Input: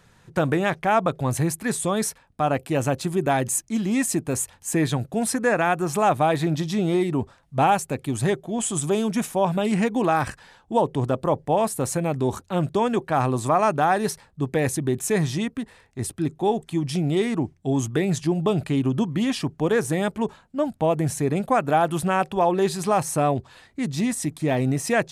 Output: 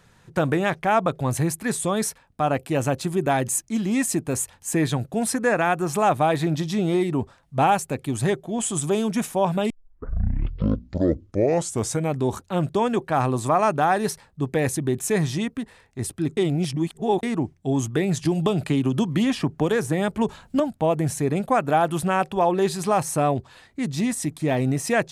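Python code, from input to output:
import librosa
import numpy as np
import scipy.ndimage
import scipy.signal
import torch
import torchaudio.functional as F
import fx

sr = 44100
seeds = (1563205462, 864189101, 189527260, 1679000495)

y = fx.band_squash(x, sr, depth_pct=100, at=(18.25, 20.6))
y = fx.edit(y, sr, fx.tape_start(start_s=9.7, length_s=2.45),
    fx.reverse_span(start_s=16.37, length_s=0.86), tone=tone)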